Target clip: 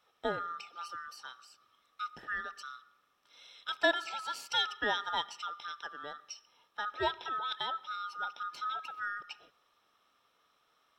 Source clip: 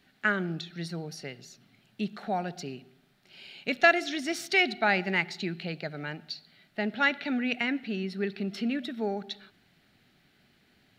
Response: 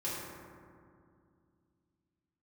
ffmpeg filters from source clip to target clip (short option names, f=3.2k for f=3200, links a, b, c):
-af "afftfilt=real='real(if(lt(b,960),b+48*(1-2*mod(floor(b/48),2)),b),0)':imag='imag(if(lt(b,960),b+48*(1-2*mod(floor(b/48),2)),b),0)':win_size=2048:overlap=0.75,adynamicequalizer=threshold=0.00447:dfrequency=860:dqfactor=6.4:tfrequency=860:tqfactor=6.4:attack=5:release=100:ratio=0.375:range=3:mode=boostabove:tftype=bell,volume=-7.5dB"